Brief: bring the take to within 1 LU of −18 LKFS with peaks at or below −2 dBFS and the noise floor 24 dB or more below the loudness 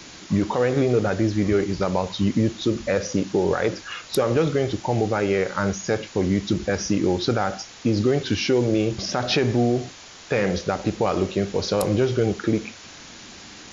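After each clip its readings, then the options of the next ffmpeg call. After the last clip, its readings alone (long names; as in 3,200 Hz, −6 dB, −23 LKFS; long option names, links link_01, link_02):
background noise floor −43 dBFS; target noise floor −47 dBFS; integrated loudness −23.0 LKFS; sample peak −9.5 dBFS; target loudness −18.0 LKFS
→ -af "afftdn=noise_reduction=6:noise_floor=-43"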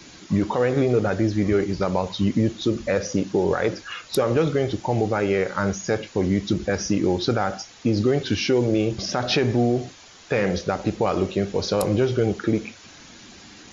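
background noise floor −47 dBFS; integrated loudness −23.0 LKFS; sample peak −10.0 dBFS; target loudness −18.0 LKFS
→ -af "volume=5dB"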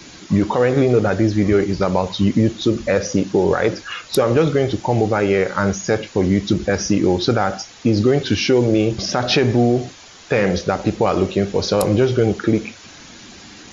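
integrated loudness −18.0 LKFS; sample peak −5.0 dBFS; background noise floor −42 dBFS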